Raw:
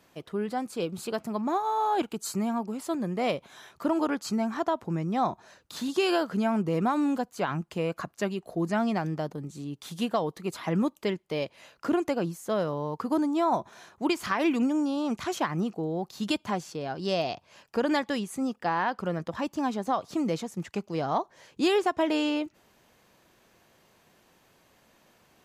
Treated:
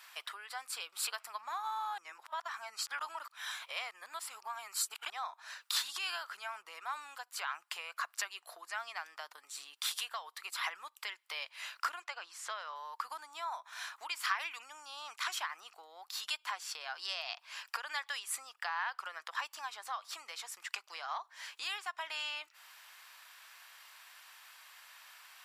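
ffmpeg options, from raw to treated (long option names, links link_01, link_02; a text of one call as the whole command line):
ffmpeg -i in.wav -filter_complex "[0:a]asettb=1/sr,asplit=3[link_01][link_02][link_03];[link_01]atrim=end=12.024[link_04];[link_02]atrim=start=12.02:end=12.76,asetpts=PTS-STARTPTS,afade=type=in:duration=0.004:curve=qsin,afade=type=out:start_time=0.736:duration=0.004:curve=qsin,highpass=280,lowpass=5700[link_05];[link_03]atrim=start=12.756[link_06];[link_04][link_05]acrossfade=duration=0.004:curve1=hsin:curve2=qsin[link_07];[link_07][link_06]acrossfade=duration=0.004:curve1=qsin:curve2=hsin,asplit=3[link_08][link_09][link_10];[link_08]atrim=end=1.982[link_11];[link_09]atrim=start=1.978:end=5.102,asetpts=PTS-STARTPTS,areverse[link_12];[link_10]atrim=start=5.098[link_13];[link_11][link_12]acrossfade=duration=0.004:curve1=hsin:curve2=hsin[link_14];[link_14][link_13]acrossfade=duration=0.004:curve1=hsin:curve2=hsin,acompressor=threshold=-37dB:ratio=12,highpass=frequency=1100:width=0.5412,highpass=frequency=1100:width=1.3066,bandreject=frequency=6400:width=8.8,volume=10dB" out.wav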